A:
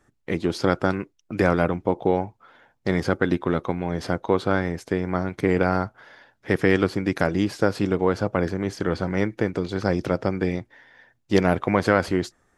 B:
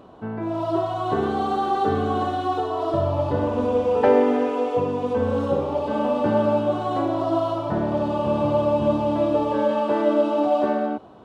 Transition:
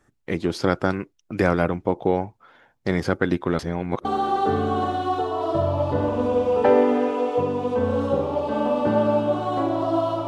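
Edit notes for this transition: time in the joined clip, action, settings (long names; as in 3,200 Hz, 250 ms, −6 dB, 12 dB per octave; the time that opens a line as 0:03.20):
A
0:03.59–0:04.05: reverse
0:04.05: continue with B from 0:01.44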